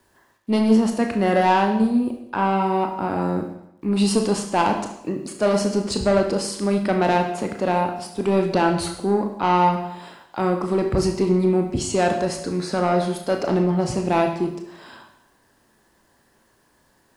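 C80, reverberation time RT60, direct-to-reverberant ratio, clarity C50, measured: 9.5 dB, 0.80 s, 3.0 dB, 7.0 dB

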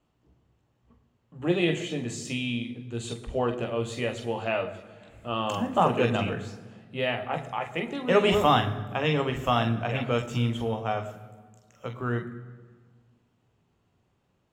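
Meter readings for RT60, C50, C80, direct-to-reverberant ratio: 1.5 s, 12.0 dB, 13.5 dB, 5.0 dB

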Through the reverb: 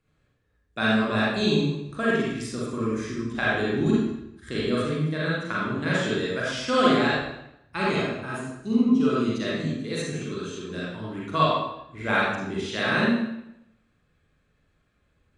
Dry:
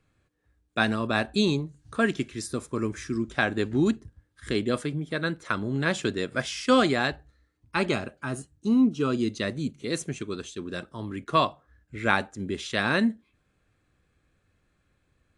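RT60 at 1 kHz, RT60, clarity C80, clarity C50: 0.80 s, 0.80 s, 1.0 dB, -3.0 dB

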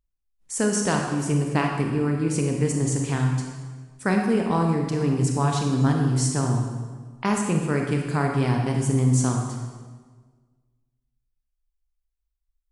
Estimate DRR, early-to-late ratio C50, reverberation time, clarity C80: 1.5 dB, 2.5 dB, 1.5 s, 4.5 dB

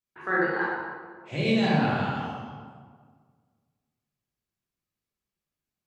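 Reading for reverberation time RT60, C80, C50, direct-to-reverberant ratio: 1.7 s, 1.0 dB, -2.0 dB, -7.0 dB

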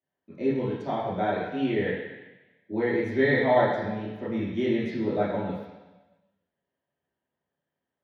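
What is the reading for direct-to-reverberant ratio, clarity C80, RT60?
-9.5 dB, 3.5 dB, 1.2 s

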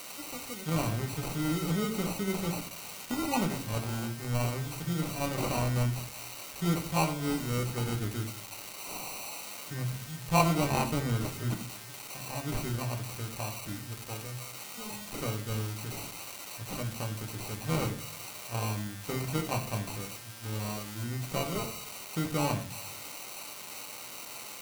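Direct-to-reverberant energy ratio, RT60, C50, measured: 3.0 dB, 0.40 s, 11.0 dB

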